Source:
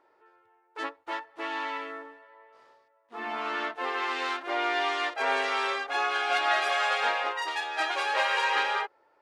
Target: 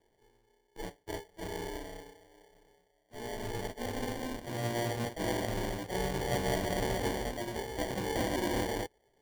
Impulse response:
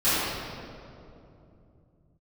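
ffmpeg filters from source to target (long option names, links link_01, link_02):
-af "acrusher=samples=34:mix=1:aa=0.000001,volume=-5.5dB"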